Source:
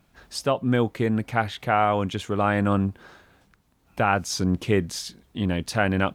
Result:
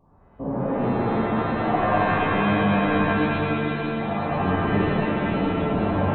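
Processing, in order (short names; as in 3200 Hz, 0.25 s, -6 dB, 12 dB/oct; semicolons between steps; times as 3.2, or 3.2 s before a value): stepped spectrum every 0.4 s; soft clip -21 dBFS, distortion -13 dB; brick-wall FIR low-pass 1200 Hz; shimmer reverb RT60 3.3 s, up +7 st, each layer -2 dB, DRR -9.5 dB; gain -4.5 dB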